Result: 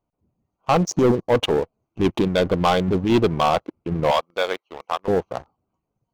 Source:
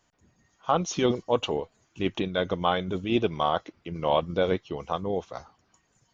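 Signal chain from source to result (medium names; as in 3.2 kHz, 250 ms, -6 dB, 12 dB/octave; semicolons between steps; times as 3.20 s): local Wiener filter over 25 samples; 0.80–1.35 s: high-order bell 2.4 kHz -13.5 dB; 4.11–5.08 s: high-pass 860 Hz 12 dB/octave; waveshaping leveller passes 3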